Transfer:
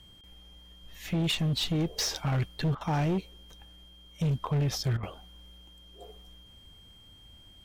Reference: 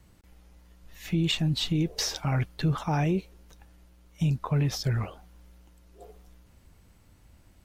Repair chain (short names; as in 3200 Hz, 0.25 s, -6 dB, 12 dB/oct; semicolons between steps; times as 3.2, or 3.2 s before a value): clip repair -24 dBFS; notch 3200 Hz, Q 30; interpolate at 2.75/4.97, 58 ms